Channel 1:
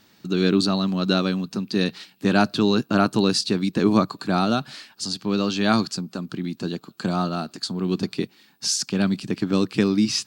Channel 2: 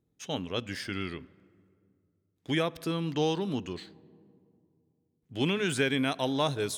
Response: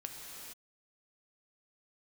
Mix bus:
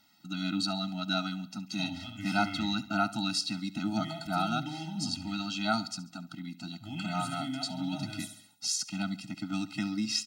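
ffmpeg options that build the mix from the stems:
-filter_complex "[0:a]lowshelf=f=410:g=-10.5,volume=-4dB,asplit=2[a][b];[b]volume=-17.5dB[c];[1:a]alimiter=level_in=1.5dB:limit=-24dB:level=0:latency=1:release=74,volume=-1.5dB,adelay=1500,volume=-2.5dB,asplit=2[d][e];[e]volume=-6.5dB[f];[c][f]amix=inputs=2:normalize=0,aecho=0:1:69|138|207|276|345|414:1|0.46|0.212|0.0973|0.0448|0.0206[g];[a][d][g]amix=inputs=3:normalize=0,afftfilt=real='re*eq(mod(floor(b*sr/1024/310),2),0)':imag='im*eq(mod(floor(b*sr/1024/310),2),0)':win_size=1024:overlap=0.75"

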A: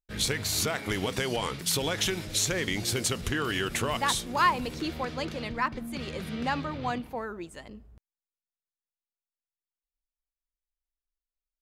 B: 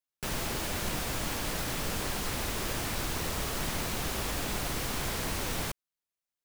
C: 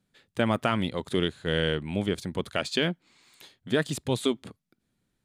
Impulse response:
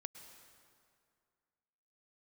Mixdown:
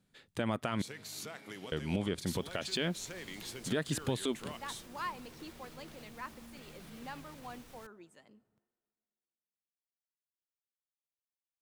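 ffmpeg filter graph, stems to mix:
-filter_complex "[0:a]highpass=f=130:w=0.5412,highpass=f=130:w=1.3066,adelay=600,volume=-16.5dB,asplit=2[a][b];[b]volume=-14.5dB[c];[1:a]alimiter=level_in=5.5dB:limit=-24dB:level=0:latency=1:release=219,volume=-5.5dB,adelay=2150,volume=-17.5dB,asplit=2[d][e];[e]volume=-16dB[f];[2:a]volume=0.5dB,asplit=3[g][h][i];[g]atrim=end=0.82,asetpts=PTS-STARTPTS,afade=t=out:st=0.816:d=0.004:c=hsin[j];[h]atrim=start=0.82:end=1.72,asetpts=PTS-STARTPTS,volume=0[k];[i]atrim=start=1.72,asetpts=PTS-STARTPTS,afade=t=in:d=0.004:c=hsin[l];[j][k][l]concat=n=3:v=0:a=1[m];[3:a]atrim=start_sample=2205[n];[c][f]amix=inputs=2:normalize=0[o];[o][n]afir=irnorm=-1:irlink=0[p];[a][d][m][p]amix=inputs=4:normalize=0,alimiter=limit=-21.5dB:level=0:latency=1:release=215"

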